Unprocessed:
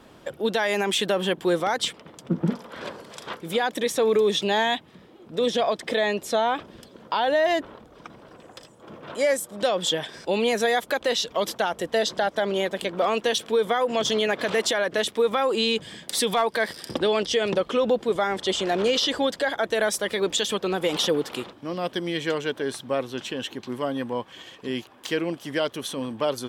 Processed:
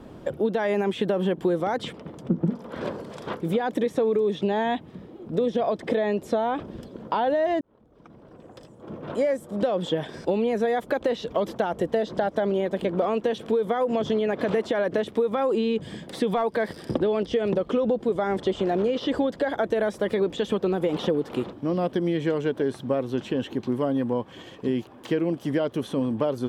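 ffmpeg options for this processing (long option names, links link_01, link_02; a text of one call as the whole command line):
ffmpeg -i in.wav -filter_complex "[0:a]asplit=2[link_01][link_02];[link_01]atrim=end=7.61,asetpts=PTS-STARTPTS,afade=type=out:start_time=7.606:duration=0.004:curve=hsin[link_03];[link_02]atrim=start=7.61,asetpts=PTS-STARTPTS,afade=type=in:duration=1.63[link_04];[link_03][link_04]concat=n=2:v=0:a=1,acrossover=split=3100[link_05][link_06];[link_06]acompressor=threshold=-40dB:ratio=4:attack=1:release=60[link_07];[link_05][link_07]amix=inputs=2:normalize=0,tiltshelf=frequency=840:gain=7.5,acompressor=threshold=-23dB:ratio=6,volume=2.5dB" out.wav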